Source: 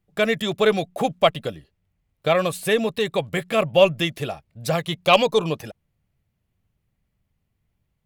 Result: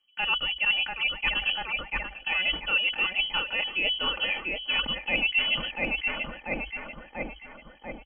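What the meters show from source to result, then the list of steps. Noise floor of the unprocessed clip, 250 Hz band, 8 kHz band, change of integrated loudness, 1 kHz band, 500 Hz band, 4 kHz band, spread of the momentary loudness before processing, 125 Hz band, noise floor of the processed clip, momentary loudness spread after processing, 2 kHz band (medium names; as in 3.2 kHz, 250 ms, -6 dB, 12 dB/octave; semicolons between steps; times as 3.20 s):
-75 dBFS, -13.5 dB, under -35 dB, -4.5 dB, -10.5 dB, -19.5 dB, +2.5 dB, 14 LU, -16.5 dB, -52 dBFS, 13 LU, +3.0 dB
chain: on a send: thinning echo 690 ms, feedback 58%, high-pass 960 Hz, level -7.5 dB; on the sum: frequency inversion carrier 3.2 kHz; reverse; compression 4:1, threshold -34 dBFS, peak gain reduction 20 dB; reverse; comb 3.3 ms, depth 62%; frequency shift -50 Hz; decay stretcher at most 140 dB/s; trim +5 dB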